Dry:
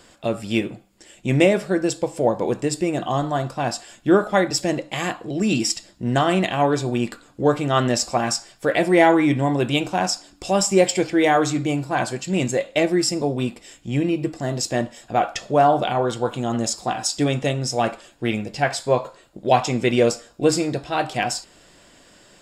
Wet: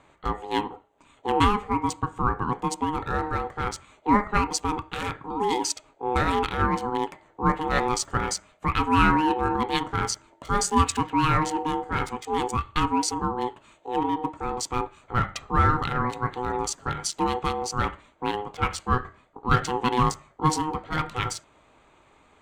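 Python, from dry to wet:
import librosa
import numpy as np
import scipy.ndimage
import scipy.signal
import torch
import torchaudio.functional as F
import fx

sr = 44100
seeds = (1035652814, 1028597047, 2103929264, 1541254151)

y = fx.wiener(x, sr, points=9)
y = y * np.sin(2.0 * np.pi * 620.0 * np.arange(len(y)) / sr)
y = y * 10.0 ** (-1.5 / 20.0)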